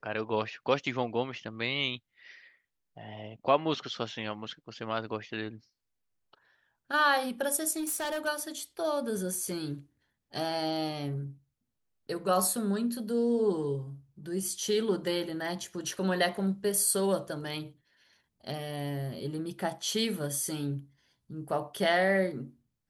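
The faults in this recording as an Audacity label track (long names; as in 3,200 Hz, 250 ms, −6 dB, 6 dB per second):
7.790000	8.280000	clipping −29.5 dBFS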